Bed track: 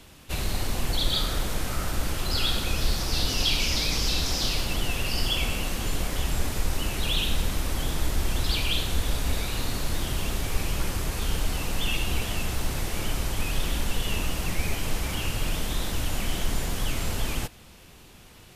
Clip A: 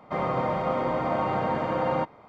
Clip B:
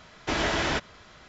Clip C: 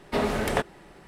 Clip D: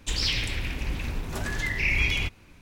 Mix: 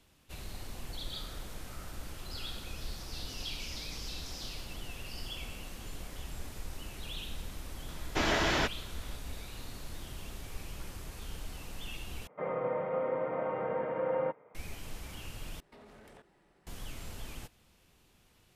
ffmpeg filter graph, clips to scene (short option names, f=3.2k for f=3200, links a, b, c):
-filter_complex "[0:a]volume=-15.5dB[a];[1:a]highpass=180,equalizer=f=230:t=q:w=4:g=-6,equalizer=f=340:t=q:w=4:g=-5,equalizer=f=480:t=q:w=4:g=9,equalizer=f=740:t=q:w=4:g=-6,equalizer=f=1.1k:t=q:w=4:g=-5,lowpass=f=2.3k:w=0.5412,lowpass=f=2.3k:w=1.3066[b];[3:a]acompressor=threshold=-34dB:ratio=10:attack=1.9:release=51:knee=1:detection=peak[c];[a]asplit=3[d][e][f];[d]atrim=end=12.274[g];[b]atrim=end=2.28,asetpts=PTS-STARTPTS,volume=-7.5dB[h];[e]atrim=start=14.546:end=15.604[i];[c]atrim=end=1.07,asetpts=PTS-STARTPTS,volume=-17.5dB[j];[f]atrim=start=16.666[k];[2:a]atrim=end=1.28,asetpts=PTS-STARTPTS,volume=-2.5dB,afade=t=in:d=0.004:c=hsin,afade=t=out:st=1.276:d=0.004:c=hsin,adelay=7880[l];[g][h]acrossfade=d=0.004:c1=hsin:c2=hsin[m];[m][i]acrossfade=d=0.004:c1=hsin:c2=hsin[n];[n][j]acrossfade=d=0.004:c1=hsin:c2=hsin[o];[o][k]acrossfade=d=0.004:c1=hsin:c2=hsin[p];[p][l]amix=inputs=2:normalize=0"